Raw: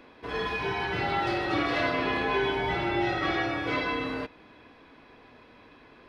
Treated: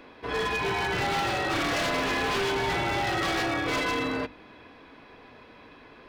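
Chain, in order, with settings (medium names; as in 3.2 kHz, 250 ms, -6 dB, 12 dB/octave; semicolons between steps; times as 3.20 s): hum notches 50/100/150/200/250/300/350 Hz; wavefolder -25.5 dBFS; trim +3.5 dB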